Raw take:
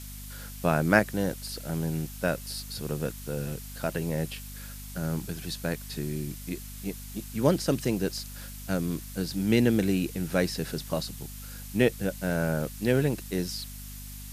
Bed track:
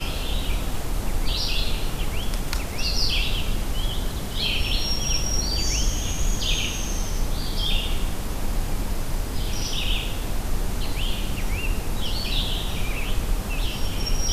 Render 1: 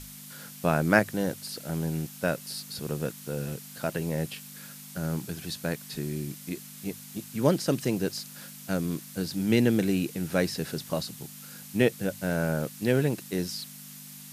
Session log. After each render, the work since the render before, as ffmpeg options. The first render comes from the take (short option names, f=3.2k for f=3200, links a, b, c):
-af "bandreject=f=50:t=h:w=6,bandreject=f=100:t=h:w=6"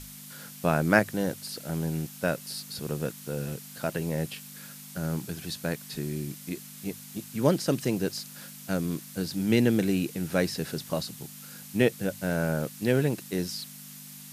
-af anull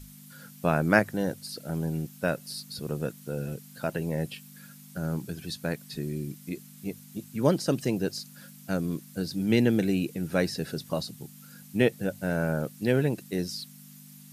-af "afftdn=nr=9:nf=-45"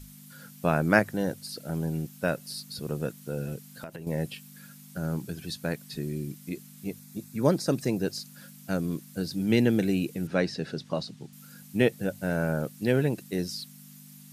-filter_complex "[0:a]asettb=1/sr,asplit=3[a][b][c];[a]atrim=end=3.654[d];[b]atrim=start=3.65:end=4.07,asetpts=PTS-STARTPTS,afade=t=in:d=0.004:c=qsin,afade=t=out:st=0.416:d=0.004:c=qsin,acompressor=threshold=-35dB:ratio=12:attack=3.2:release=140:knee=1:detection=peak[e];[c]atrim=start=4.066[f];[d][e]acrossfade=d=0.004:c1=hsin:c2=qsin[g];[g][f]acrossfade=d=0.004:c1=qsin:c2=hsin,asettb=1/sr,asplit=3[h][i][j];[h]atrim=end=6.994[k];[i]atrim=start=6.99:end=8.03,asetpts=PTS-STARTPTS,afade=t=in:d=0.004:c=qsin,afade=t=out:st=1.036:d=0.004:c=qsin,bandreject=f=3k:w=5.4[l];[j]atrim=start=8.026[m];[k][l]acrossfade=d=0.004:c1=hsin:c2=qsin[n];[n][m]acrossfade=d=0.004:c1=qsin:c2=hsin,asettb=1/sr,asplit=3[o][p][q];[o]atrim=end=10.274[r];[p]atrim=start=10.27:end=11.33,asetpts=PTS-STARTPTS,afade=t=in:d=0.004:c=qsin,afade=t=out:st=1.056:d=0.004:c=qsin,highpass=110,lowpass=5.3k[s];[q]atrim=start=11.326[t];[r][s]acrossfade=d=0.004:c1=hsin:c2=qsin[u];[u][t]acrossfade=d=0.004:c1=qsin:c2=hsin"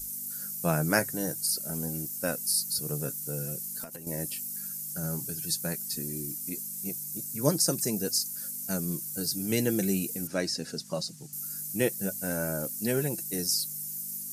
-af "flanger=delay=3:depth=4.5:regen=51:speed=0.48:shape=triangular,aexciter=amount=9.7:drive=2.9:freq=5.1k"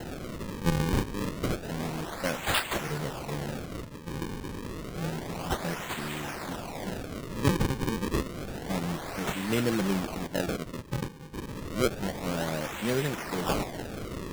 -af "acrusher=samples=37:mix=1:aa=0.000001:lfo=1:lforange=59.2:lforate=0.29"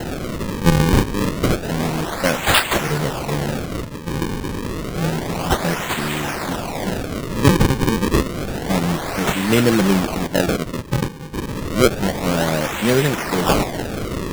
-af "volume=12dB,alimiter=limit=-1dB:level=0:latency=1"